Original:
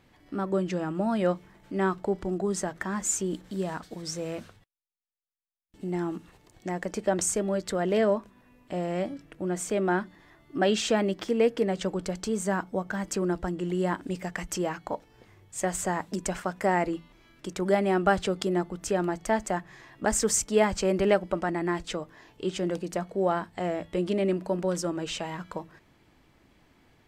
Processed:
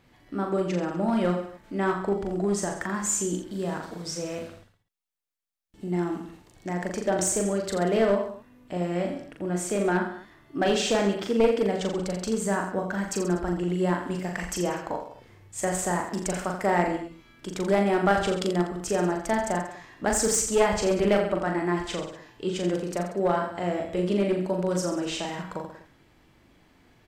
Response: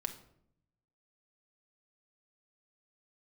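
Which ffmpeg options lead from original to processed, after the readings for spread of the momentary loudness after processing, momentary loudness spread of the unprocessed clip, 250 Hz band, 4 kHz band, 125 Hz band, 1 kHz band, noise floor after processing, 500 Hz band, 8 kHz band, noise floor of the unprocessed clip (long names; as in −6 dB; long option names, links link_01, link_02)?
12 LU, 12 LU, +2.0 dB, +2.0 dB, +2.5 dB, +2.0 dB, −60 dBFS, +1.5 dB, +2.0 dB, −63 dBFS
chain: -af "aecho=1:1:40|84|132.4|185.6|244.2:0.631|0.398|0.251|0.158|0.1,aeval=exprs='clip(val(0),-1,0.112)':channel_layout=same"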